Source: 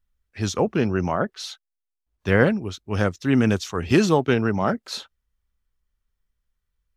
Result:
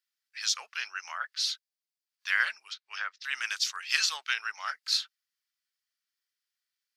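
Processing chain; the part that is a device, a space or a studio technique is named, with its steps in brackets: headphones lying on a table (high-pass 1.5 kHz 24 dB/octave; peaking EQ 4.8 kHz +9 dB 0.45 oct); 2.59–3.24 s: low-pass that closes with the level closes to 1.9 kHz, closed at -31.5 dBFS

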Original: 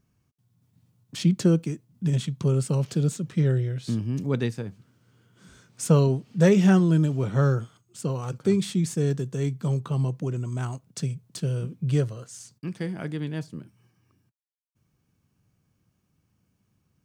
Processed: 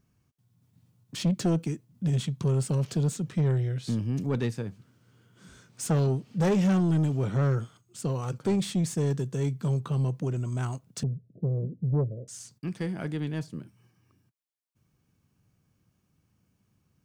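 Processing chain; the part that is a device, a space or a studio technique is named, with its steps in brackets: 11.03–12.28 s: steep low-pass 640 Hz 96 dB/octave; saturation between pre-emphasis and de-emphasis (treble shelf 2.1 kHz +9.5 dB; saturation -19.5 dBFS, distortion -11 dB; treble shelf 2.1 kHz -9.5 dB)

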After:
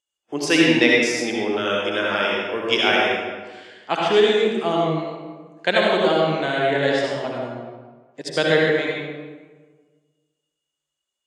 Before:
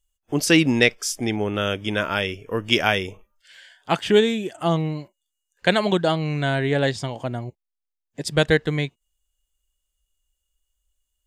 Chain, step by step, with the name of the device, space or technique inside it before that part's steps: supermarket ceiling speaker (band-pass 300–6400 Hz; reverberation RT60 1.4 s, pre-delay 59 ms, DRR -3.5 dB); trim -1.5 dB

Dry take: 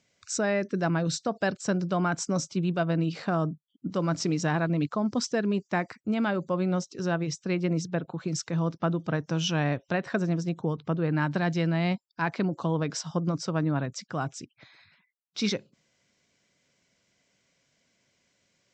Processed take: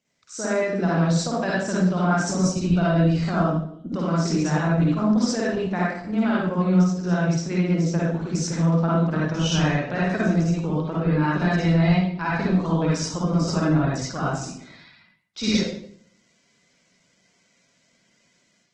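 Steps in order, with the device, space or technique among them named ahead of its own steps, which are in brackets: 6.34–7.23 s: dynamic bell 170 Hz, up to +4 dB, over -40 dBFS, Q 7.8; far-field microphone of a smart speaker (reverberation RT60 0.60 s, pre-delay 48 ms, DRR -6.5 dB; high-pass 120 Hz 12 dB/octave; level rider gain up to 7 dB; trim -7 dB; Opus 16 kbps 48 kHz)

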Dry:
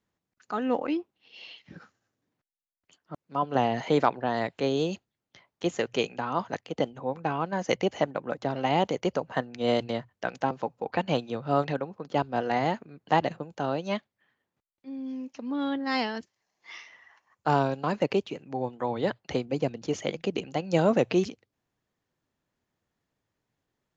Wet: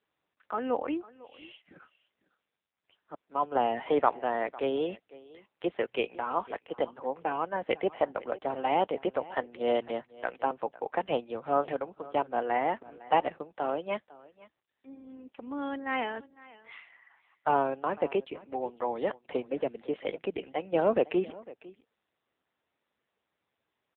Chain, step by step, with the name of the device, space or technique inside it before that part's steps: satellite phone (band-pass 330–3200 Hz; delay 503 ms -20 dB; AMR-NB 6.7 kbps 8 kHz)

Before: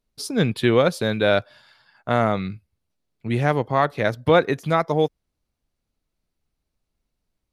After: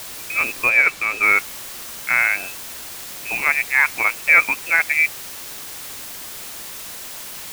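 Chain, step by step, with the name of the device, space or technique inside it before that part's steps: scrambled radio voice (band-pass 330–2800 Hz; frequency inversion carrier 2.8 kHz; white noise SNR 12 dB); 0.69–1.23 s: treble shelf 9.4 kHz -10 dB; trim +3.5 dB

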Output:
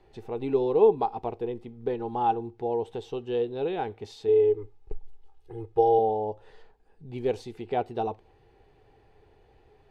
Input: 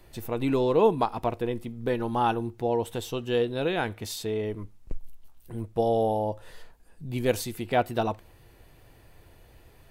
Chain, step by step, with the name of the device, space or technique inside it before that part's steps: 4.28–5.99 s: comb 2.4 ms, depth 85%; dynamic bell 1.6 kHz, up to -5 dB, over -45 dBFS, Q 1.4; inside a cardboard box (low-pass 4.3 kHz 12 dB/octave; small resonant body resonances 420/790 Hz, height 14 dB, ringing for 50 ms); trim -7.5 dB

